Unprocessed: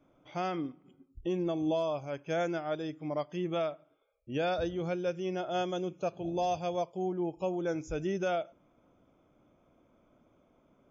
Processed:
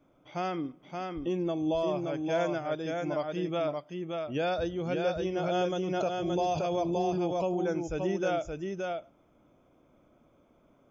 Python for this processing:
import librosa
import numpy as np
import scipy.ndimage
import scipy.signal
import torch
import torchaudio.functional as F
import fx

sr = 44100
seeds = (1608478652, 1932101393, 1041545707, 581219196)

y = x + 10.0 ** (-4.0 / 20.0) * np.pad(x, (int(573 * sr / 1000.0), 0))[:len(x)]
y = fx.pre_swell(y, sr, db_per_s=23.0, at=(5.37, 7.68))
y = F.gain(torch.from_numpy(y), 1.0).numpy()